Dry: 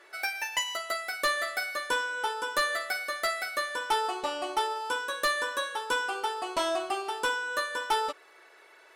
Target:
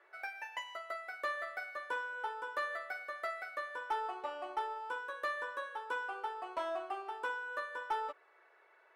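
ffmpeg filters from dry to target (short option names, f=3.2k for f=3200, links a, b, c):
-filter_complex "[0:a]acrossover=split=370 2300:gain=0.158 1 0.126[a][b][c];[a][b][c]amix=inputs=3:normalize=0,aeval=exprs='0.141*(cos(1*acos(clip(val(0)/0.141,-1,1)))-cos(1*PI/2))+0.00224*(cos(2*acos(clip(val(0)/0.141,-1,1)))-cos(2*PI/2))+0.00708*(cos(4*acos(clip(val(0)/0.141,-1,1)))-cos(4*PI/2))+0.00398*(cos(6*acos(clip(val(0)/0.141,-1,1)))-cos(6*PI/2))':c=same,volume=-7.5dB"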